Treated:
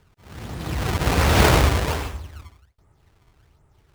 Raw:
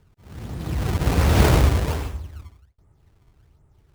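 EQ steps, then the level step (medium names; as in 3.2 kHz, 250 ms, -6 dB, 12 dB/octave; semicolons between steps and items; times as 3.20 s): bass shelf 490 Hz -8.5 dB; treble shelf 6.4 kHz -4 dB; +6.5 dB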